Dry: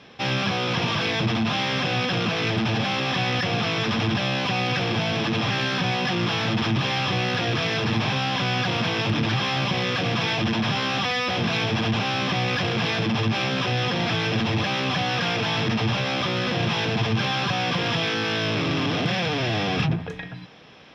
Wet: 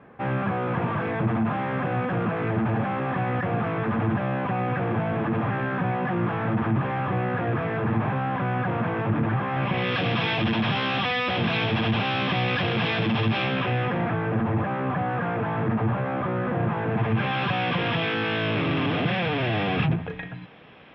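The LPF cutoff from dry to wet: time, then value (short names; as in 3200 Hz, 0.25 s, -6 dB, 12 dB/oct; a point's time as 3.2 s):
LPF 24 dB/oct
9.48 s 1700 Hz
9.95 s 3500 Hz
13.37 s 3500 Hz
14.19 s 1600 Hz
16.84 s 1600 Hz
17.41 s 3000 Hz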